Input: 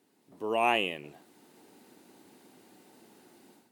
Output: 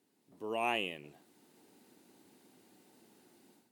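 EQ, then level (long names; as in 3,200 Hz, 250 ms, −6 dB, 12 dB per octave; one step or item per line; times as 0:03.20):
parametric band 930 Hz −3.5 dB 2.9 octaves
−4.5 dB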